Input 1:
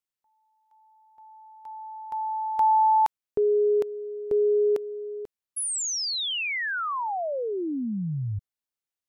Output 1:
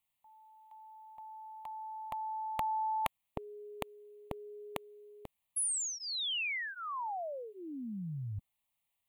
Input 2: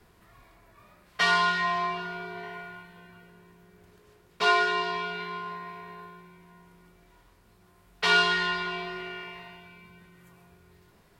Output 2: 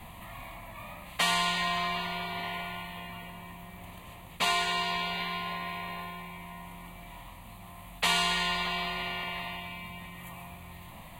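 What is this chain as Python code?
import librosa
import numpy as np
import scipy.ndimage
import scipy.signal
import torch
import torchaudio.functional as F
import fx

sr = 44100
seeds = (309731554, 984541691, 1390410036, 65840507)

y = fx.fixed_phaser(x, sr, hz=1500.0, stages=6)
y = fx.spectral_comp(y, sr, ratio=2.0)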